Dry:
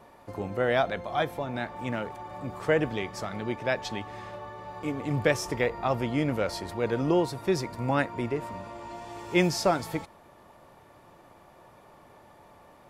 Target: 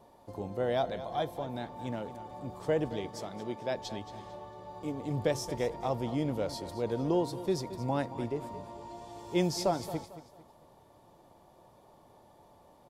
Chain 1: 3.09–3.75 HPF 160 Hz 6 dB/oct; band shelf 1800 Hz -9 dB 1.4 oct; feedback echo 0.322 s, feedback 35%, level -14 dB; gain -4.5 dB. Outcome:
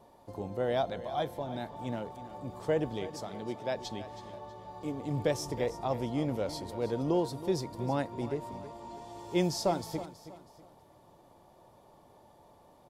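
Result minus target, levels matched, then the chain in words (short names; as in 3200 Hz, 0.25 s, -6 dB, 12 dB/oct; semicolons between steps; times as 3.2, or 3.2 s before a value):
echo 98 ms late
3.09–3.75 HPF 160 Hz 6 dB/oct; band shelf 1800 Hz -9 dB 1.4 oct; feedback echo 0.224 s, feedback 35%, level -14 dB; gain -4.5 dB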